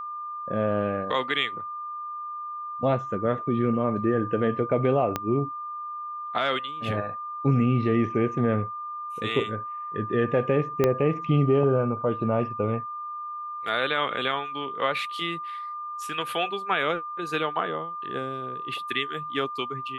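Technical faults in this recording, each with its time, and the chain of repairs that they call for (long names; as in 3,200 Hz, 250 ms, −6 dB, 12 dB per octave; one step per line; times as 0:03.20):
whistle 1,200 Hz −32 dBFS
0:05.16: click −11 dBFS
0:10.84: click −9 dBFS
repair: click removal
notch filter 1,200 Hz, Q 30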